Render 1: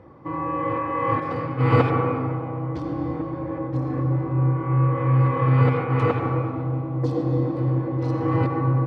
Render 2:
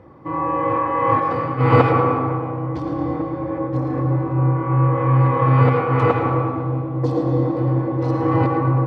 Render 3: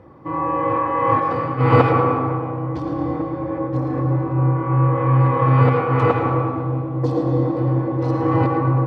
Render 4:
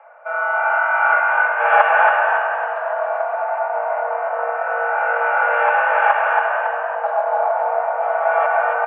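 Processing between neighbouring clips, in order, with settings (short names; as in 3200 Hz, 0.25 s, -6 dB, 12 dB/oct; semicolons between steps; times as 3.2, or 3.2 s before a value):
dynamic EQ 790 Hz, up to +5 dB, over -34 dBFS, Q 0.81; thinning echo 0.11 s, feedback 45%, level -10 dB; gain +2 dB
notch 2100 Hz, Q 25
mistuned SSB +340 Hz 210–2400 Hz; frequency-shifting echo 0.278 s, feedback 39%, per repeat +49 Hz, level -4 dB; gain +1.5 dB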